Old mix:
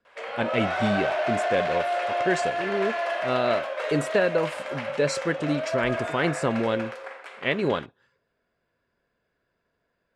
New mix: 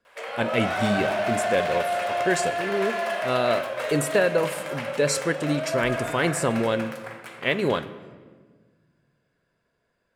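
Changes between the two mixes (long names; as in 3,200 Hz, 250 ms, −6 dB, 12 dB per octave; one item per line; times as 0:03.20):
speech: send on
master: remove high-frequency loss of the air 80 metres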